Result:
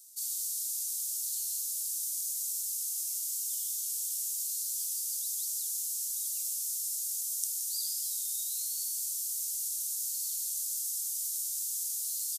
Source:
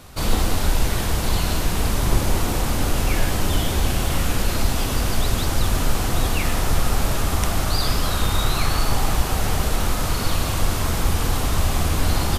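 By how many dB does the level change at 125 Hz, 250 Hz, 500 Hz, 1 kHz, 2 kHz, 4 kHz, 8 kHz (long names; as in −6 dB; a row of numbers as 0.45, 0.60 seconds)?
below −40 dB, below −40 dB, below −40 dB, below −40 dB, below −40 dB, −14.5 dB, −1.0 dB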